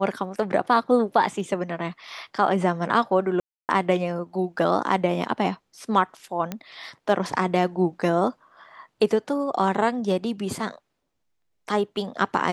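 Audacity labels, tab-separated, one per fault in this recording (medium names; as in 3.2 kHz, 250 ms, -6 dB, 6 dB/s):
3.400000	3.690000	dropout 289 ms
6.520000	6.520000	pop -15 dBFS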